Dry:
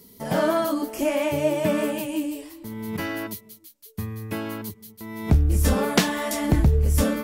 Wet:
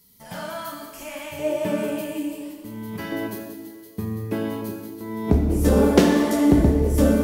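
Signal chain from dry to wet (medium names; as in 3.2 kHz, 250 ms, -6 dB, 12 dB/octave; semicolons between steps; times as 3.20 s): peaking EQ 370 Hz -14 dB 1.9 oct, from 1.39 s +3 dB, from 3.12 s +13.5 dB; plate-style reverb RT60 1.7 s, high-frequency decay 0.9×, DRR 1.5 dB; trim -5.5 dB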